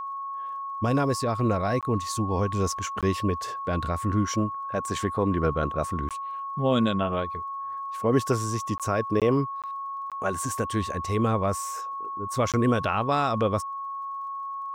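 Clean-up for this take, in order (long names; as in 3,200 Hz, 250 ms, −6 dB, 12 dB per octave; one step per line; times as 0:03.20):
click removal
notch filter 1,100 Hz, Q 30
repair the gap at 0:01.81/0:03.01/0:06.09/0:08.78/0:09.20/0:09.62/0:10.10/0:12.52, 17 ms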